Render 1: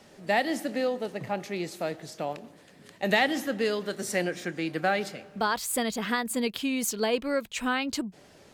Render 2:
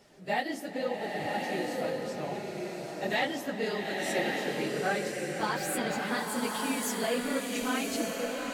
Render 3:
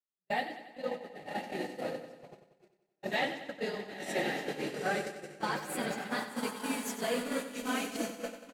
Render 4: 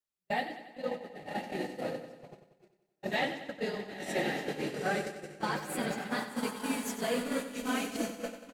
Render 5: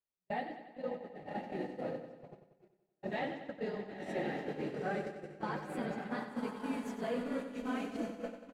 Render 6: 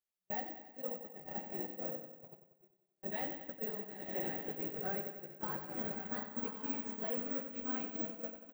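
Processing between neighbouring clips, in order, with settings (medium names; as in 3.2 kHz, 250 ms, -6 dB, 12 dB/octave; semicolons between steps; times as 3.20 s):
phase randomisation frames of 50 ms; swelling reverb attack 1140 ms, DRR -0.5 dB; trim -5.5 dB
gate -31 dBFS, range -49 dB; on a send: feedback delay 93 ms, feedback 58%, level -11 dB; on the sum: trim -2.5 dB
bass shelf 170 Hz +6.5 dB
low-pass 1.2 kHz 6 dB/octave; in parallel at -1 dB: peak limiter -29 dBFS, peak gain reduction 8.5 dB; on the sum: trim -7 dB
careless resampling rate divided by 2×, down none, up zero stuff; trim -5 dB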